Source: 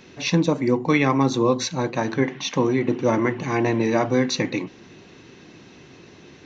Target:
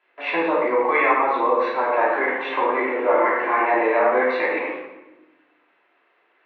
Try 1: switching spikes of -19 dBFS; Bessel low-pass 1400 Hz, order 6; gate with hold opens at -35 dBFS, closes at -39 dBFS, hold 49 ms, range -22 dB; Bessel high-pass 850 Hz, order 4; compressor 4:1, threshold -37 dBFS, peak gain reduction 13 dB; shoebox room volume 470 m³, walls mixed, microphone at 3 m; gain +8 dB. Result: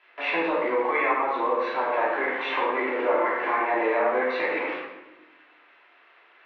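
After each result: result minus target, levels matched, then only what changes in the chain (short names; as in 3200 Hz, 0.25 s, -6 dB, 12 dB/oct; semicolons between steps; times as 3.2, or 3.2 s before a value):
switching spikes: distortion +10 dB; compressor: peak gain reduction +5.5 dB
change: switching spikes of -29.5 dBFS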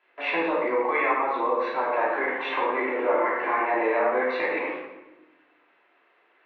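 compressor: peak gain reduction +5.5 dB
change: compressor 4:1, threshold -29.5 dBFS, peak gain reduction 7 dB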